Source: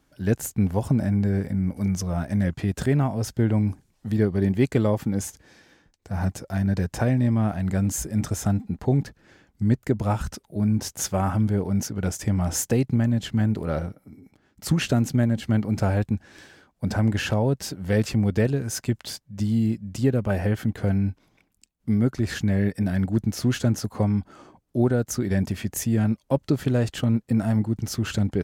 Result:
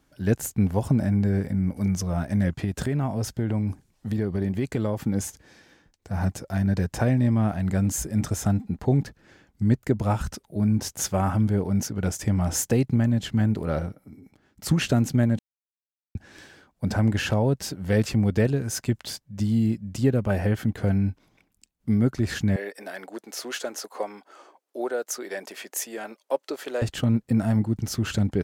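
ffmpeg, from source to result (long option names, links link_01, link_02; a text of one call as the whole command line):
ffmpeg -i in.wav -filter_complex "[0:a]asettb=1/sr,asplit=3[link_01][link_02][link_03];[link_01]atrim=end=2.644[link_04];[link_02]atrim=start=2.64:end=5.06,asetpts=PTS-STARTPTS,afade=type=in:duration=0.004:curve=qsin,afade=type=out:start_time=2.416:duration=0.004:curve=qsin,acompressor=threshold=-21dB:ratio=6:attack=3.2:release=140:knee=1:detection=peak[link_05];[link_03]atrim=start=5.056[link_06];[link_04][link_05]acrossfade=duration=0.004:curve1=hsin:curve2=qsin[link_07];[link_07][link_06]acrossfade=duration=0.004:curve1=qsin:curve2=hsin,asettb=1/sr,asplit=3[link_08][link_09][link_10];[link_08]atrim=end=22.564[link_11];[link_09]atrim=start=22.56:end=26.82,asetpts=PTS-STARTPTS,afade=type=in:duration=0.004:curve=qsin,afade=type=out:start_time=4.256:duration=0.004:curve=qsin,highpass=frequency=420:width=0.5412,highpass=frequency=420:width=1.3066[link_12];[link_10]atrim=start=26.816[link_13];[link_11][link_12]acrossfade=duration=0.004:curve1=hsin:curve2=qsin[link_14];[link_14][link_13]acrossfade=duration=0.004:curve1=qsin:curve2=hsin,asplit=3[link_15][link_16][link_17];[link_15]atrim=end=15.39,asetpts=PTS-STARTPTS,afade=type=out:start_time=15.386:duration=0.004:curve=hsin[link_18];[link_16]atrim=start=15.39:end=16.15,asetpts=PTS-STARTPTS,volume=0[link_19];[link_17]atrim=start=16.15,asetpts=PTS-STARTPTS,afade=type=in:duration=0.004:curve=hsin[link_20];[link_18][link_19][link_20]concat=n=3:v=0:a=1" out.wav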